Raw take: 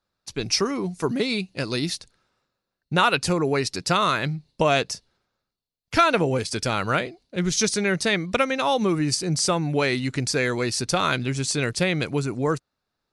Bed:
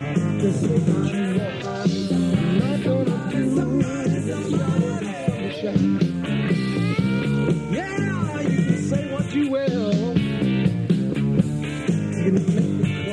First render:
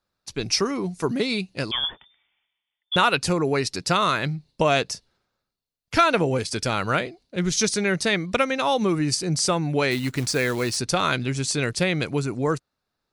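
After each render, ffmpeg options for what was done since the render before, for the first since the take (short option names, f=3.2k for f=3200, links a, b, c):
-filter_complex "[0:a]asettb=1/sr,asplit=3[a][b][c];[a]atrim=end=1.714[d];[b]atrim=start=1.71:end=2.96,asetpts=PTS-STARTPTS,afade=t=in:d=0.004:c=qsin,afade=t=out:st=1.246:d=0.004:c=qsin,lowpass=f=3.1k:t=q:w=0.5098,lowpass=f=3.1k:t=q:w=0.6013,lowpass=f=3.1k:t=q:w=0.9,lowpass=f=3.1k:t=q:w=2.563,afreqshift=-3600[e];[c]atrim=start=2.956[f];[d][e]acrossfade=d=0.004:c1=hsin:c2=qsin[g];[g][f]acrossfade=d=0.004:c1=qsin:c2=hsin,asettb=1/sr,asplit=3[h][i][j];[h]atrim=end=9.914[k];[i]atrim=start=9.91:end=10.77,asetpts=PTS-STARTPTS,afade=t=in:d=0.004:c=qsin,afade=t=out:st=0.856:d=0.004:c=qsin,acrusher=bits=4:mode=log:mix=0:aa=0.000001[l];[j]atrim=start=10.766[m];[k][l]acrossfade=d=0.004:c1=hsin:c2=qsin[n];[n][m]acrossfade=d=0.004:c1=qsin:c2=hsin"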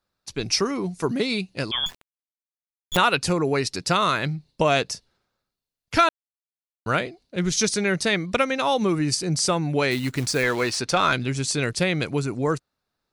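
-filter_complex "[0:a]asettb=1/sr,asplit=3[a][b][c];[a]atrim=end=1.864[d];[b]atrim=start=1.86:end=2.97,asetpts=PTS-STARTPTS,afade=t=in:d=0.004:c=qsin,afade=t=out:st=1.106:d=0.004:c=qsin,acrusher=bits=4:dc=4:mix=0:aa=0.000001[e];[c]atrim=start=2.966[f];[d][e]acrossfade=d=0.004:c1=hsin:c2=qsin[g];[g][f]acrossfade=d=0.004:c1=qsin:c2=hsin,asettb=1/sr,asplit=3[h][i][j];[h]atrim=end=10.434[k];[i]atrim=start=10.43:end=11.13,asetpts=PTS-STARTPTS,afade=t=in:d=0.004:c=qsin,afade=t=out:st=0.696:d=0.004:c=qsin,asplit=2[l][m];[m]highpass=f=720:p=1,volume=11dB,asoftclip=type=tanh:threshold=-8dB[n];[l][n]amix=inputs=2:normalize=0,lowpass=f=2.9k:p=1,volume=-6dB[o];[j]atrim=start=11.126[p];[k][o]acrossfade=d=0.004:c1=hsin:c2=qsin[q];[q][p]acrossfade=d=0.004:c1=qsin:c2=hsin,asplit=3[r][s][t];[r]atrim=end=6.09,asetpts=PTS-STARTPTS,afade=t=out:st=6.086:d=0.004:c=hsin[u];[s]atrim=start=6.09:end=6.86,asetpts=PTS-STARTPTS,volume=0[v];[t]atrim=start=6.86,asetpts=PTS-STARTPTS,afade=t=in:d=0.004:c=hsin[w];[u][v][w]concat=n=3:v=0:a=1"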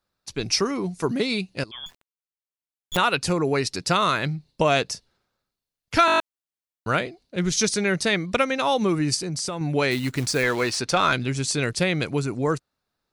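-filter_complex "[0:a]asettb=1/sr,asplit=3[a][b][c];[a]atrim=end=9.164[d];[b]atrim=start=9.16:end=9.61,asetpts=PTS-STARTPTS,afade=t=in:d=0.004:c=qsin,afade=t=out:st=0.446:d=0.004:c=qsin,acompressor=threshold=-25dB:ratio=6:attack=3.2:release=140:knee=1:detection=peak[e];[c]atrim=start=9.606[f];[d][e]acrossfade=d=0.004:c1=hsin:c2=qsin[g];[g][f]acrossfade=d=0.004:c1=qsin:c2=hsin,asplit=9[h][i][j][k][l][m][n][o][p];[h]atrim=end=1.64,asetpts=PTS-STARTPTS,afade=t=out:st=1.636:d=0.004:c=hsin:silence=0.177828[q];[i]atrim=start=1.64:end=6.082,asetpts=PTS-STARTPTS,afade=t=in:d=1.83:silence=0.177828[r];[j]atrim=start=6.058:end=6.082[s];[k]atrim=start=6.058:end=6.082[t];[l]atrim=start=6.058:end=6.082[u];[m]atrim=start=6.058:end=6.082[v];[n]atrim=start=6.058:end=6.082[w];[o]atrim=start=6.058:end=6.082[x];[p]atrim=start=6.198[y];[q][r]concat=n=2:v=0:a=1[z];[z][s]acrossfade=d=0.004:c1=hsin:c2=hsin[aa];[aa][t]acrossfade=d=0.004:c1=hsin:c2=hsin[ab];[ab][u]acrossfade=d=0.004:c1=hsin:c2=hsin[ac];[ac][v]acrossfade=d=0.004:c1=hsin:c2=hsin[ad];[ad][w]acrossfade=d=0.004:c1=hsin:c2=hsin[ae];[ae][x]acrossfade=d=0.004:c1=hsin:c2=hsin[af];[af][y]acrossfade=d=0.004:c1=hsin:c2=hsin"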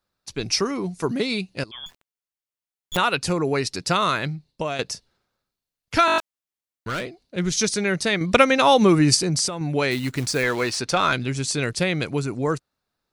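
-filter_complex "[0:a]asettb=1/sr,asplit=3[a][b][c];[a]atrim=end=6.184[d];[b]atrim=start=6.18:end=7.22,asetpts=PTS-STARTPTS,afade=t=in:d=0.004:c=qsin,afade=t=out:st=1.036:d=0.004:c=qsin,volume=24dB,asoftclip=hard,volume=-24dB[e];[c]atrim=start=7.216[f];[d][e]acrossfade=d=0.004:c1=hsin:c2=qsin[g];[g][f]acrossfade=d=0.004:c1=qsin:c2=hsin,asplit=4[h][i][j][k];[h]atrim=end=4.79,asetpts=PTS-STARTPTS,afade=t=out:st=4.16:d=0.63:silence=0.298538[l];[i]atrim=start=4.79:end=8.212,asetpts=PTS-STARTPTS,afade=t=in:d=0.004:c=hsin:silence=0.298538[m];[j]atrim=start=8.208:end=9.482,asetpts=PTS-STARTPTS,volume=6.5dB[n];[k]atrim=start=9.478[o];[l][m]concat=n=2:v=0:a=1[p];[p][n]acrossfade=d=0.004:c1=hsin:c2=hsin[q];[q][o]acrossfade=d=0.004:c1=hsin:c2=hsin"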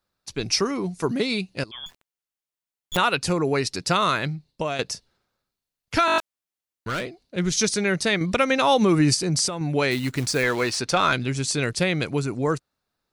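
-af "alimiter=limit=-9dB:level=0:latency=1:release=178"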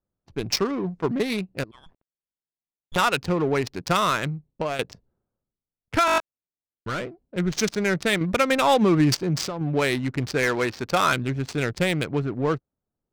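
-af "adynamicsmooth=sensitivity=2.5:basefreq=600"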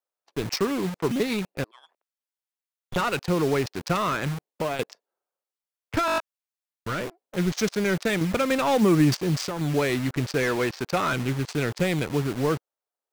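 -filter_complex "[0:a]acrossover=split=490[a][b];[a]acrusher=bits=5:mix=0:aa=0.000001[c];[b]asoftclip=type=tanh:threshold=-21.5dB[d];[c][d]amix=inputs=2:normalize=0"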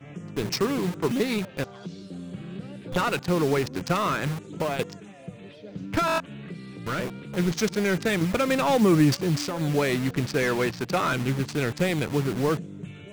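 -filter_complex "[1:a]volume=-17.5dB[a];[0:a][a]amix=inputs=2:normalize=0"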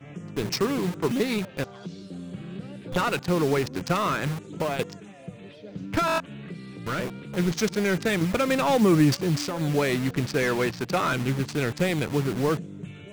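-af anull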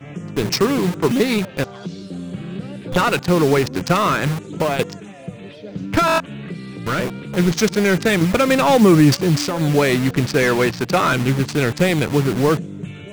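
-af "volume=8dB,alimiter=limit=-3dB:level=0:latency=1"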